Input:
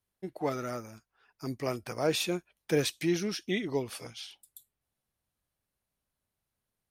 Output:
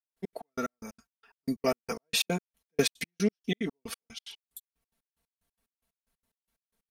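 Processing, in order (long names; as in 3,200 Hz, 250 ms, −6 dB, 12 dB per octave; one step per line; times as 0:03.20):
gate pattern "..x.x..x" 183 BPM −60 dB
comb filter 4.4 ms, depth 83%
level +3.5 dB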